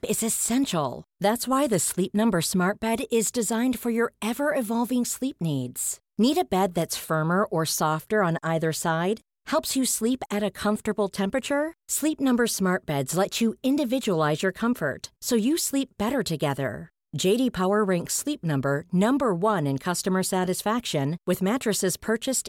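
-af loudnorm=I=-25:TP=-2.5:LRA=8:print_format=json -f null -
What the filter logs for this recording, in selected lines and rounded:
"input_i" : "-25.2",
"input_tp" : "-11.2",
"input_lra" : "1.6",
"input_thresh" : "-35.3",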